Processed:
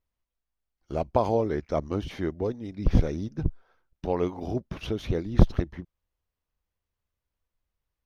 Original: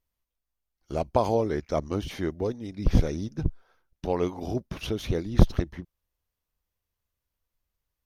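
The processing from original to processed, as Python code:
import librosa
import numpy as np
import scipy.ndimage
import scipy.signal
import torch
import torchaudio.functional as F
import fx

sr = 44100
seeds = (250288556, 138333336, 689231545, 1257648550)

y = fx.high_shelf(x, sr, hz=5200.0, db=-11.5)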